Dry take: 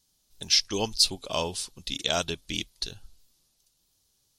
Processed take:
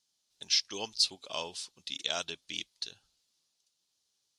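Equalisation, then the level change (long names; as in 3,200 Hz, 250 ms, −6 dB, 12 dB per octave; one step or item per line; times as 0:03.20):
high-pass filter 140 Hz 6 dB per octave
high-frequency loss of the air 84 metres
spectral tilt +2.5 dB per octave
−7.5 dB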